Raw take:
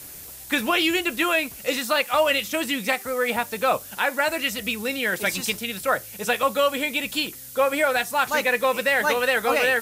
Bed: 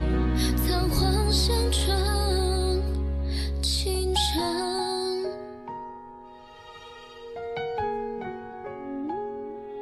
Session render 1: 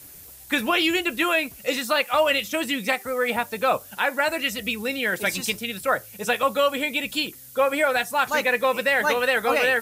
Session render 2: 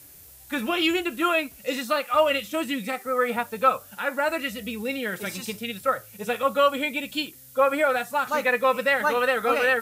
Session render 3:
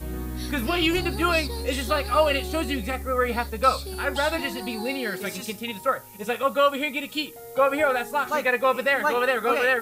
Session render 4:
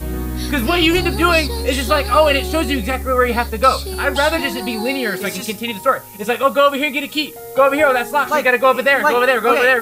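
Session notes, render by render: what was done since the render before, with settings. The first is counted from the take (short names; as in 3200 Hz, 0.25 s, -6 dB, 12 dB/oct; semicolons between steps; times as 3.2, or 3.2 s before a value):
denoiser 6 dB, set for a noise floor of -40 dBFS
dynamic EQ 1300 Hz, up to +8 dB, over -41 dBFS, Q 4.4; harmonic-percussive split percussive -12 dB
add bed -8 dB
gain +8.5 dB; limiter -2 dBFS, peak gain reduction 2.5 dB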